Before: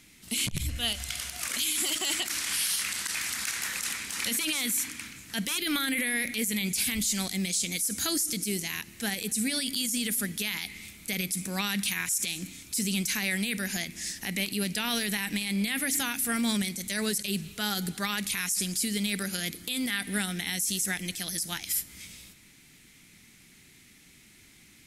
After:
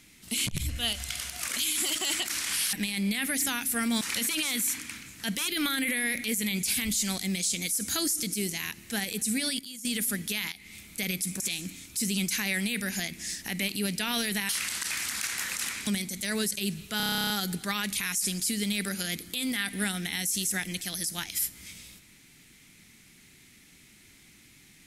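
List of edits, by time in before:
2.73–4.11 swap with 15.26–16.54
9.69–9.95 gain -12 dB
10.62–10.93 fade in, from -15 dB
11.5–12.17 cut
17.64 stutter 0.03 s, 12 plays

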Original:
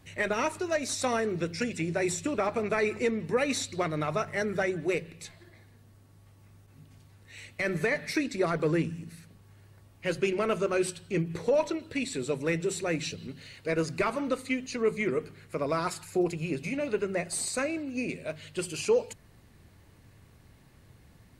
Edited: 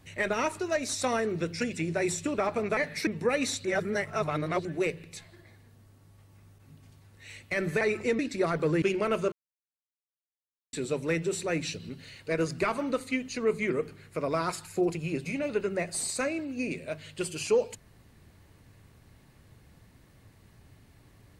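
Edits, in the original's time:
2.77–3.15 swap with 7.89–8.19
3.73–4.73 reverse
8.82–10.2 cut
10.7–12.11 mute

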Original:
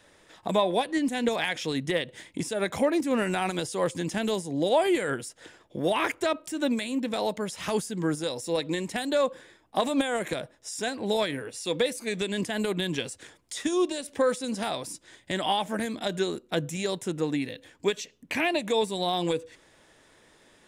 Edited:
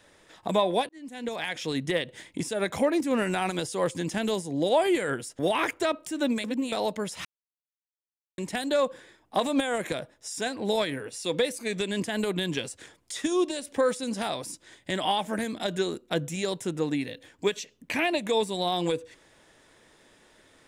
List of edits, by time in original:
0.89–1.76 fade in
5.39–5.8 cut
6.85–7.13 reverse
7.66–8.79 mute

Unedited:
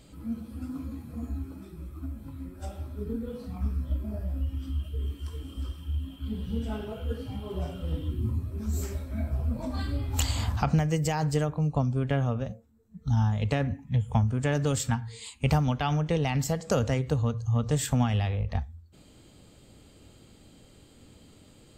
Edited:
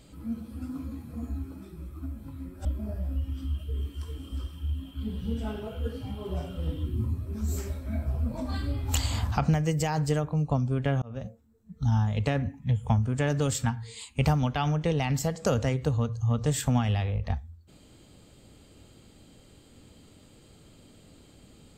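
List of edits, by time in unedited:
2.65–3.9 cut
12.27–12.52 fade in

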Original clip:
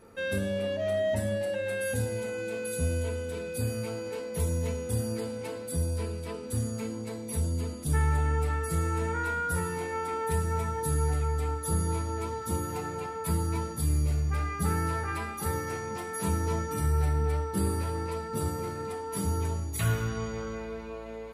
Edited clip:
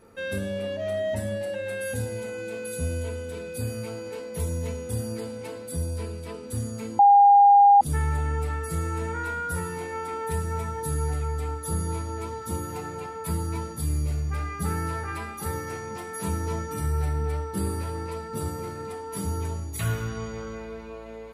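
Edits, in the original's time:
6.99–7.81 bleep 808 Hz -11 dBFS

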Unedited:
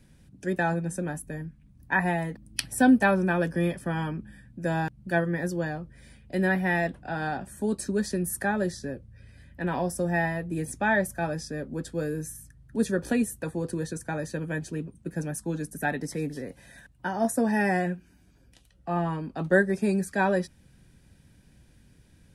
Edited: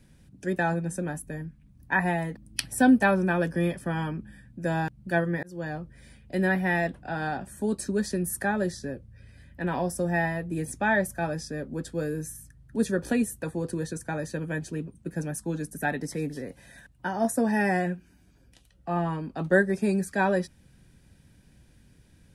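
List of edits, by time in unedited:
5.43–5.75 fade in linear

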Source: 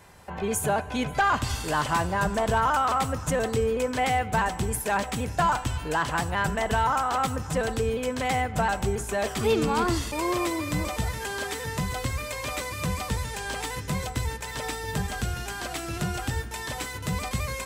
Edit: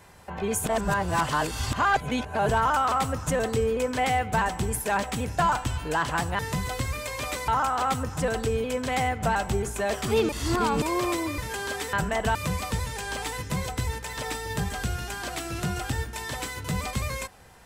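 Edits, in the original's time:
0.66–2.49 reverse
6.39–6.81 swap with 11.64–12.73
9.62–10.15 reverse
10.71–11.09 cut

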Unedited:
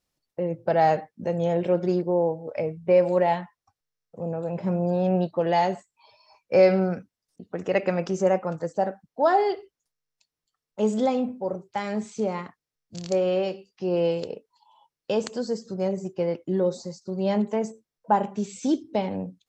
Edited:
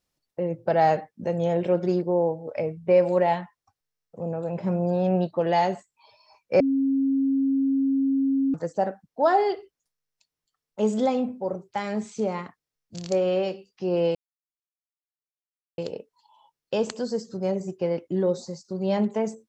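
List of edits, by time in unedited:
6.6–8.54 bleep 271 Hz -19.5 dBFS
14.15 insert silence 1.63 s

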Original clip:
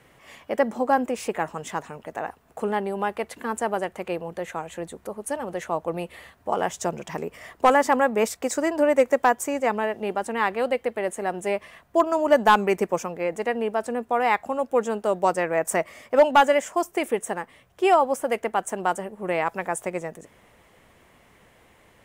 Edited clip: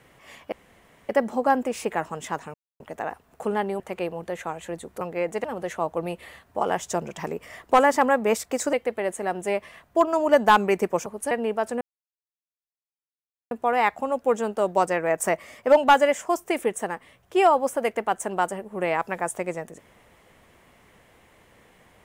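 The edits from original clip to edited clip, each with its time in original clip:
0.52 insert room tone 0.57 s
1.97 insert silence 0.26 s
2.97–3.89 cut
5.1–5.35 swap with 13.05–13.48
8.64–10.72 cut
13.98 insert silence 1.70 s

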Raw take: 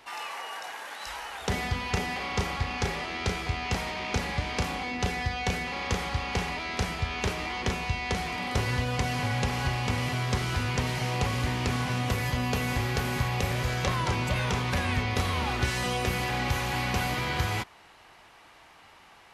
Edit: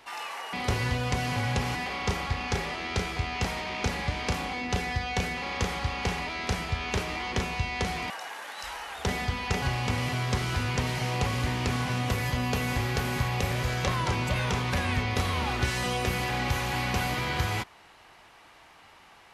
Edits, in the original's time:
0.53–2.05 swap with 8.4–9.62

